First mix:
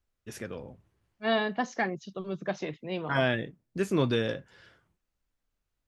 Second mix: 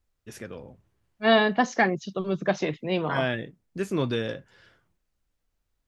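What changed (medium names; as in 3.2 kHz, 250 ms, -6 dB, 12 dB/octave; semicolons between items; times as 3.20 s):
second voice +7.5 dB; reverb: off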